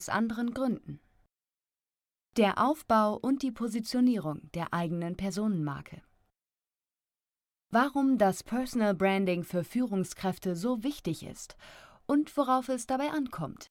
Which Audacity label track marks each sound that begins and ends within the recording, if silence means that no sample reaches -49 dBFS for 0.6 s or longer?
2.360000	6.000000	sound